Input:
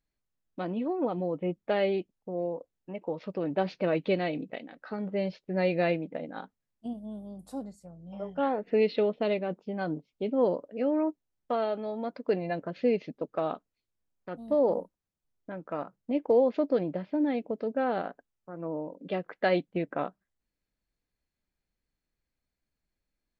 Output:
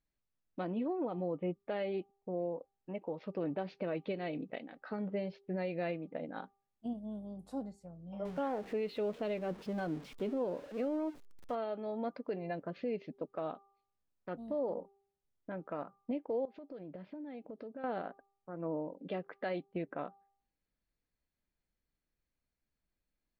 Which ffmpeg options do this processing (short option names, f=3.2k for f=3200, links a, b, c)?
-filter_complex "[0:a]asettb=1/sr,asplit=3[a][b][c];[a]atrim=end=8.254[d];[b]atrim=start=8.25:end=11.55,asetpts=PTS-STARTPTS,afade=t=in:d=0.004:c=qsin,afade=t=out:st=3.296:d=0.004:c=qsin,aeval=exprs='val(0)+0.5*0.00891*sgn(val(0))':c=same[e];[c]atrim=start=11.546[f];[d][e]acrossfade=d=0.004:c1=hsin:c2=qsin[g];[g][f]acrossfade=d=0.004:c1=qsin:c2=hsin,asettb=1/sr,asplit=3[h][i][j];[h]atrim=end=16.454[k];[i]atrim=start=16.45:end=17.84,asetpts=PTS-STARTPTS,afade=t=in:d=0.004:c=qsin,afade=t=out:st=1.386:d=0.004:c=qsin,acompressor=threshold=-41dB:ratio=6:attack=3.2:release=140:knee=1:detection=peak[l];[j]atrim=start=17.836[m];[k][l]acrossfade=d=0.004:c1=hsin:c2=qsin[n];[n][m]acrossfade=d=0.004:c1=qsin:c2=hsin,bandreject=f=396.3:t=h:w=4,bandreject=f=792.6:t=h:w=4,bandreject=f=1.1889k:t=h:w=4,alimiter=level_in=1.5dB:limit=-24dB:level=0:latency=1:release=388,volume=-1.5dB,lowpass=f=3.9k:p=1,volume=-2.5dB"